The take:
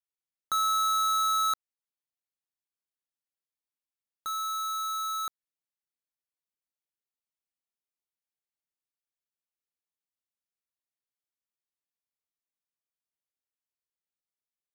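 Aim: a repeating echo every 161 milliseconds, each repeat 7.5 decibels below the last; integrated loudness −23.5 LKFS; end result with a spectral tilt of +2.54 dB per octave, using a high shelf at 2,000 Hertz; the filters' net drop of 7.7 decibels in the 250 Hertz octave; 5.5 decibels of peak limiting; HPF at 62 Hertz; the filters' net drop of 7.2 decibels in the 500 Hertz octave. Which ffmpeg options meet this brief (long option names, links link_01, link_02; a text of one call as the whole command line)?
ffmpeg -i in.wav -af "highpass=62,equalizer=frequency=250:width_type=o:gain=-8,equalizer=frequency=500:width_type=o:gain=-8.5,highshelf=frequency=2000:gain=6.5,alimiter=limit=-20.5dB:level=0:latency=1,aecho=1:1:161|322|483|644|805:0.422|0.177|0.0744|0.0312|0.0131,volume=5dB" out.wav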